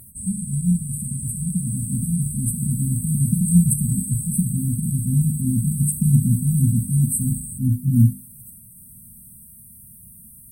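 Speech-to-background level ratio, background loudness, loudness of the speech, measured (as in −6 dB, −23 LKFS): 9.0 dB, −30.0 LKFS, −21.0 LKFS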